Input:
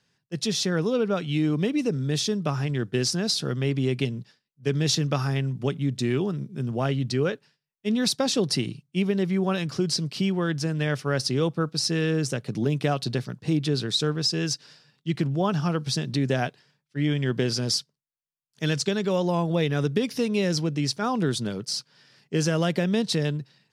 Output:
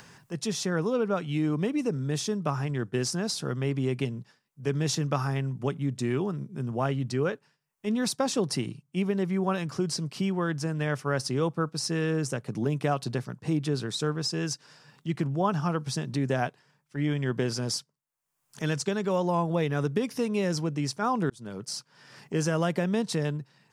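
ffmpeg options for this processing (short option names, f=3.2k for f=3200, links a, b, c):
-filter_complex "[0:a]asplit=2[a][b];[a]atrim=end=21.3,asetpts=PTS-STARTPTS,afade=t=out:st=21.296:d=0.004:c=hsin[c];[b]atrim=start=21.3,asetpts=PTS-STARTPTS,afade=t=in:d=0.4[d];[c][d]concat=n=2:v=0:a=1,acompressor=mode=upward:threshold=-30dB:ratio=2.5,equalizer=f=1k:t=o:w=1:g=6,equalizer=f=4k:t=o:w=1:g=-7,equalizer=f=8k:t=o:w=1:g=3,volume=-3.5dB"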